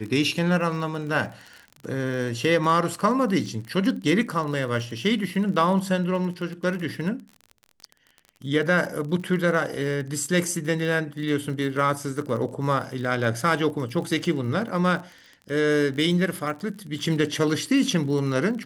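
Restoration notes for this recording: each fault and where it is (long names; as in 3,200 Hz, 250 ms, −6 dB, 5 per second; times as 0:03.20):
surface crackle 34 per second −32 dBFS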